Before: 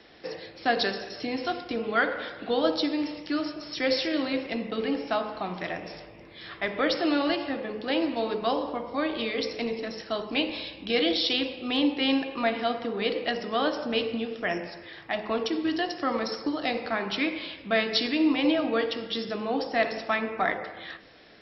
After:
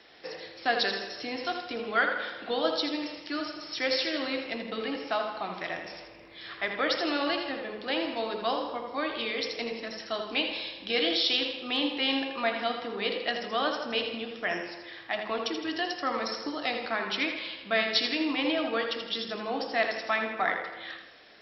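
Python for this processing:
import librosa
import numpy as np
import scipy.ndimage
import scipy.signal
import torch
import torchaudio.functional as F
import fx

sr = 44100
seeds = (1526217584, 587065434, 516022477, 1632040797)

y = fx.low_shelf(x, sr, hz=420.0, db=-10.0)
y = fx.echo_feedback(y, sr, ms=81, feedback_pct=44, wet_db=-7.5)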